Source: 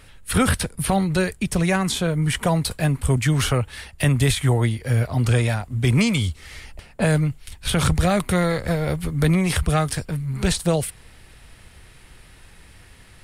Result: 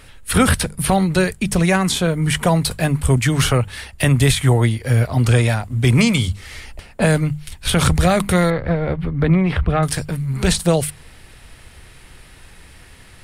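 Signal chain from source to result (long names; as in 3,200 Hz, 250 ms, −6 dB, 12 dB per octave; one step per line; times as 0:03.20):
0:08.50–0:09.83: high-frequency loss of the air 410 metres
mains-hum notches 50/100/150/200 Hz
level +4.5 dB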